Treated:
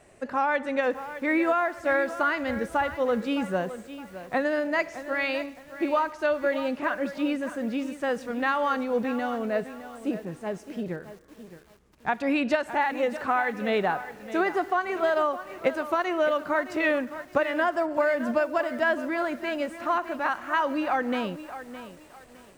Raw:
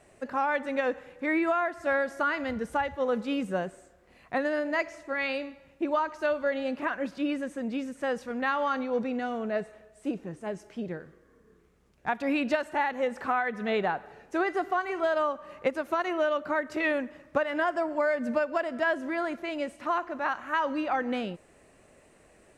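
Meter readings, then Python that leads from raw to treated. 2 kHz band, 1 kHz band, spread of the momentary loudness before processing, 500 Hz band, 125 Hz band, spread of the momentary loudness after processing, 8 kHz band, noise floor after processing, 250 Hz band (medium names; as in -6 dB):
+2.5 dB, +2.5 dB, 8 LU, +2.5 dB, +3.0 dB, 10 LU, no reading, -51 dBFS, +2.5 dB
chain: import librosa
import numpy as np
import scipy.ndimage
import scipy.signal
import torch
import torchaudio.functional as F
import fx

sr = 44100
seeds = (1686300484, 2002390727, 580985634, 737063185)

y = fx.echo_crushed(x, sr, ms=614, feedback_pct=35, bits=8, wet_db=-12.5)
y = F.gain(torch.from_numpy(y), 2.5).numpy()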